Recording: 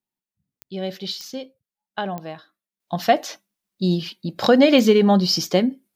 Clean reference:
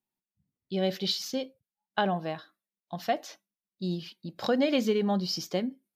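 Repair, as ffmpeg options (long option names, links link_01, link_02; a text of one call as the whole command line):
ffmpeg -i in.wav -af "adeclick=threshold=4,asetnsamples=nb_out_samples=441:pad=0,asendcmd='2.8 volume volume -11.5dB',volume=0dB" out.wav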